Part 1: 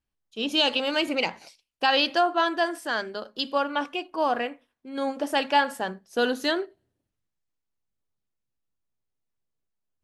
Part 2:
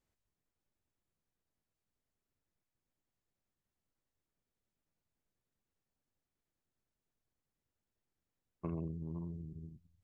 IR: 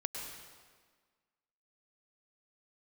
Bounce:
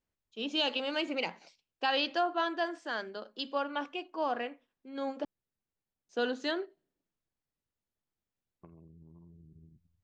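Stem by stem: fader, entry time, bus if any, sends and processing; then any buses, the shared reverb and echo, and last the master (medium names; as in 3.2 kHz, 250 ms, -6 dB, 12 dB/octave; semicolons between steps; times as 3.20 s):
-7.0 dB, 0.00 s, muted 5.25–6.09 s, no send, Chebyshev band-pass 160–7200 Hz, order 4
-3.0 dB, 0.00 s, no send, compression 6:1, threshold -50 dBFS, peak gain reduction 14.5 dB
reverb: none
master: treble shelf 6.9 kHz -7.5 dB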